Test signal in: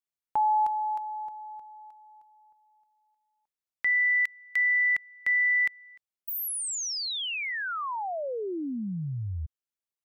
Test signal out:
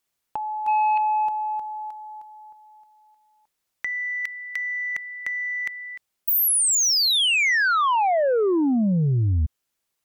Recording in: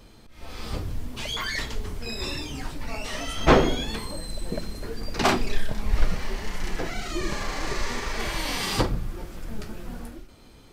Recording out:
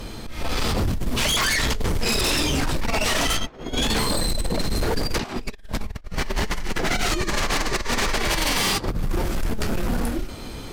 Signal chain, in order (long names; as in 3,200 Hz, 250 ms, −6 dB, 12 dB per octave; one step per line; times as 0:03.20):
compressor whose output falls as the input rises −30 dBFS, ratio −0.5
sine wavefolder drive 11 dB, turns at −15 dBFS
level −3 dB